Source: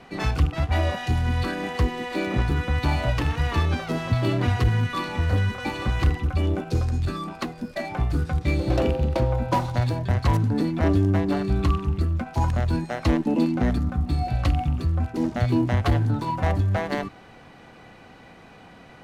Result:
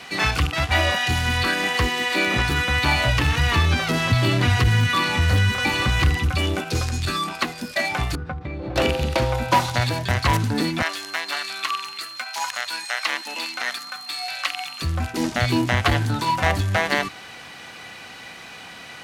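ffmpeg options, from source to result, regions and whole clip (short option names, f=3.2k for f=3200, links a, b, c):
-filter_complex "[0:a]asettb=1/sr,asplit=3[a][b][c];[a]atrim=end=3.064[d];[b]atrim=start=3.06:end=6.35,asetpts=PTS-STARTPTS,afade=t=in:d=0.004:c=qsin,afade=t=out:st=3.286:d=0.004:c=qsin,acompressor=threshold=-26dB:ratio=1.5:attack=3.2:release=140:knee=1:detection=peak,equalizer=f=89:w=0.33:g=8[e];[c]atrim=start=6.346[f];[d][e]acrossfade=d=0.004:c1=hsin:c2=qsin[g];[g][f]acrossfade=d=0.004:c1=qsin:c2=hsin,asettb=1/sr,asplit=3[h][i][j];[h]atrim=end=8.154[k];[i]atrim=start=8.15:end=8.76,asetpts=PTS-STARTPTS,afade=t=in:d=0.004:c=qsin,afade=t=out:st=0.606:d=0.004:c=qsin,lowpass=1.1k,acompressor=threshold=-25dB:ratio=12:attack=3.2:release=140:knee=1:detection=peak[l];[j]atrim=start=8.756[m];[k][l]acrossfade=d=0.004:c1=hsin:c2=qsin[n];[n][m]acrossfade=d=0.004:c1=qsin:c2=hsin,asettb=1/sr,asplit=3[o][p][q];[o]atrim=end=10.824[r];[p]atrim=start=10.82:end=14.82,asetpts=PTS-STARTPTS,afade=t=in:d=0.004:c=qsin,afade=t=out:st=3.996:d=0.004:c=qsin,highpass=1.1k,aeval=exprs='val(0)+0.00224*sin(2*PI*4200*n/s)':c=same[s];[q]atrim=start=14.816[t];[r][s]acrossfade=d=0.004:c1=hsin:c2=qsin[u];[u][t]acrossfade=d=0.004:c1=qsin:c2=hsin,tiltshelf=f=1.3k:g=-10,acrossover=split=2900[v][w];[w]acompressor=threshold=-37dB:ratio=4:attack=1:release=60[x];[v][x]amix=inputs=2:normalize=0,highpass=51,volume=9dB"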